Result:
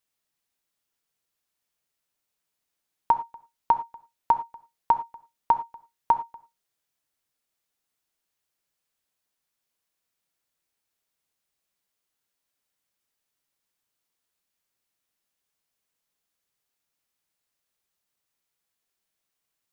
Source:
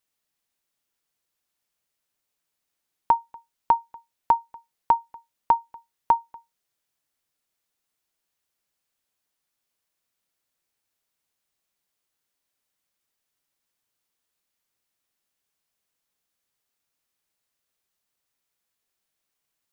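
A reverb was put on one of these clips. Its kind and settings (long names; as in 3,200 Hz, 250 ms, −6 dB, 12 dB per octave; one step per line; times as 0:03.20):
reverb whose tail is shaped and stops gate 130 ms flat, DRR 11 dB
level −1.5 dB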